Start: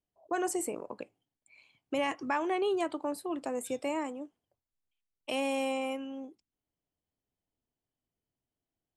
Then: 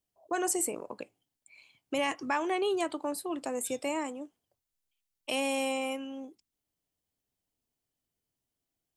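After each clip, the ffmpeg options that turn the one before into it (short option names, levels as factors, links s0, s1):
-af "highshelf=f=3200:g=8"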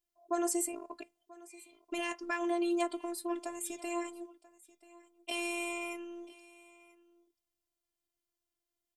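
-af "afftfilt=real='hypot(re,im)*cos(PI*b)':imag='0':win_size=512:overlap=0.75,aecho=1:1:986:0.0841"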